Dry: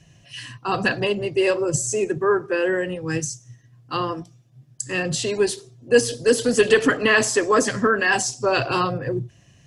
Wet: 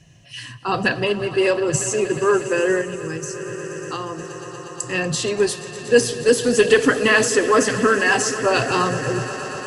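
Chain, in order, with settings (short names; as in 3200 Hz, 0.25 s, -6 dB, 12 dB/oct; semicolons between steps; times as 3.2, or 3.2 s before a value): swelling echo 0.119 s, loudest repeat 5, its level -17.5 dB; 2.81–4.2 compressor, threshold -26 dBFS, peak gain reduction 7.5 dB; gain +1.5 dB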